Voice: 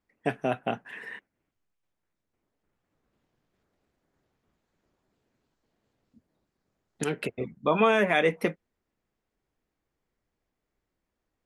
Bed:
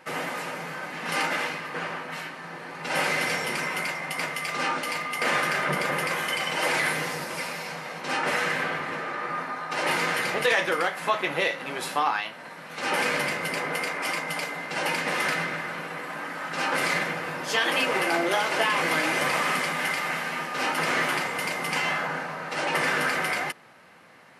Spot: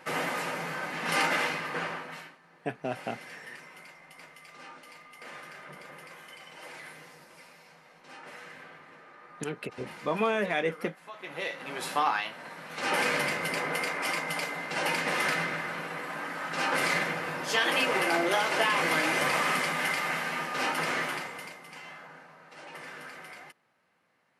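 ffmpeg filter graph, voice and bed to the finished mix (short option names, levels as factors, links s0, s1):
-filter_complex "[0:a]adelay=2400,volume=0.531[s0];[1:a]volume=8.41,afade=t=out:st=1.71:d=0.68:silence=0.0944061,afade=t=in:st=11.13:d=0.86:silence=0.11885,afade=t=out:st=20.56:d=1.05:silence=0.141254[s1];[s0][s1]amix=inputs=2:normalize=0"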